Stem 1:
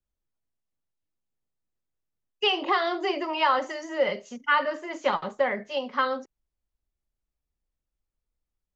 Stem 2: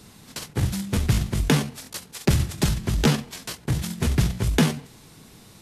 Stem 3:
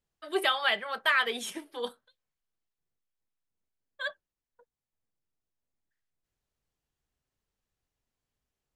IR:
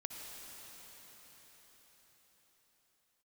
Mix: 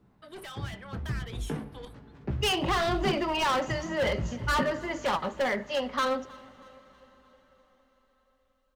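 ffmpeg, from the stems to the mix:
-filter_complex "[0:a]volume=25.5dB,asoftclip=hard,volume=-25.5dB,volume=1dB,asplit=3[link_01][link_02][link_03];[link_02]volume=-17dB[link_04];[link_03]volume=-22.5dB[link_05];[1:a]lowpass=1300,flanger=delay=15.5:depth=3.2:speed=0.85,volume=-12.5dB,asplit=2[link_06][link_07];[link_07]volume=-4.5dB[link_08];[2:a]asoftclip=type=tanh:threshold=-30dB,asubboost=boost=11.5:cutoff=62,acompressor=threshold=-36dB:ratio=6,volume=-5.5dB[link_09];[3:a]atrim=start_sample=2205[link_10];[link_04][link_08]amix=inputs=2:normalize=0[link_11];[link_11][link_10]afir=irnorm=-1:irlink=0[link_12];[link_05]aecho=0:1:318|636|954|1272|1590|1908|2226:1|0.48|0.23|0.111|0.0531|0.0255|0.0122[link_13];[link_01][link_06][link_09][link_12][link_13]amix=inputs=5:normalize=0"

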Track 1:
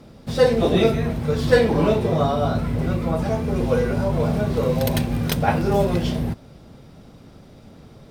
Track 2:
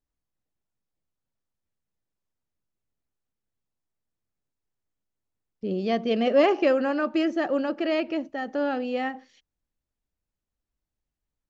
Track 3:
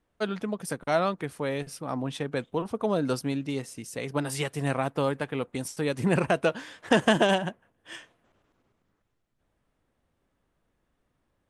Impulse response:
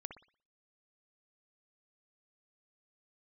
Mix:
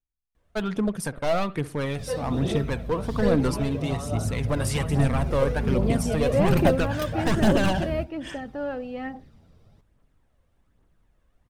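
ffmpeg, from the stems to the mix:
-filter_complex "[0:a]dynaudnorm=framelen=140:gausssize=13:maxgain=6dB,flanger=delay=8.9:depth=8.2:regen=48:speed=0.36:shape=sinusoidal,adelay=1700,volume=-11.5dB[link_01];[1:a]agate=range=-10dB:threshold=-48dB:ratio=16:detection=peak,lowpass=frequency=1800:poles=1,volume=-4.5dB[link_02];[2:a]asoftclip=type=hard:threshold=-24dB,adelay=350,volume=-0.5dB,asplit=2[link_03][link_04];[link_04]volume=-4.5dB[link_05];[3:a]atrim=start_sample=2205[link_06];[link_05][link_06]afir=irnorm=-1:irlink=0[link_07];[link_01][link_02][link_03][link_07]amix=inputs=4:normalize=0,lowshelf=frequency=110:gain=9,aphaser=in_gain=1:out_gain=1:delay=2:decay=0.4:speed=1.2:type=triangular"

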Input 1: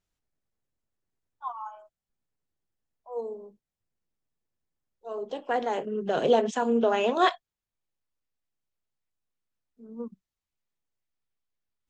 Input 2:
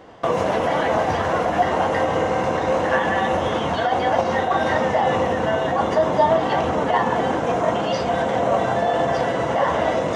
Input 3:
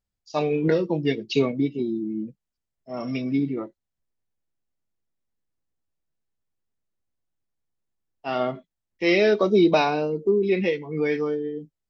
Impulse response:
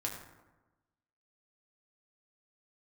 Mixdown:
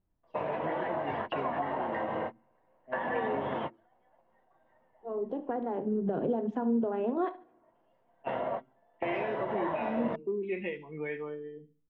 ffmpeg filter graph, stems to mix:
-filter_complex "[0:a]lowpass=1000,acompressor=threshold=-33dB:ratio=3,volume=0.5dB,asplit=3[link_01][link_02][link_03];[link_02]volume=-23dB[link_04];[link_03]volume=-16.5dB[link_05];[1:a]volume=-11.5dB[link_06];[2:a]highshelf=frequency=3600:width_type=q:width=3:gain=-7,volume=-14dB,asplit=3[link_07][link_08][link_09];[link_08]volume=-17.5dB[link_10];[link_09]apad=whole_len=447901[link_11];[link_06][link_11]sidechaingate=range=-41dB:threshold=-46dB:ratio=16:detection=peak[link_12];[link_12][link_07]amix=inputs=2:normalize=0,highpass=160,equalizer=frequency=190:width_type=q:width=4:gain=-7,equalizer=frequency=290:width_type=q:width=4:gain=-8,equalizer=frequency=620:width_type=q:width=4:gain=8,equalizer=frequency=940:width_type=q:width=4:gain=8,equalizer=frequency=1800:width_type=q:width=4:gain=5,lowpass=frequency=3100:width=0.5412,lowpass=frequency=3100:width=1.3066,acompressor=threshold=-30dB:ratio=4,volume=0dB[link_13];[3:a]atrim=start_sample=2205[link_14];[link_04][link_14]afir=irnorm=-1:irlink=0[link_15];[link_05][link_10]amix=inputs=2:normalize=0,aecho=0:1:72|144|216|288:1|0.28|0.0784|0.022[link_16];[link_01][link_13][link_15][link_16]amix=inputs=4:normalize=0,lowshelf=frequency=400:width_type=q:width=1.5:gain=6"

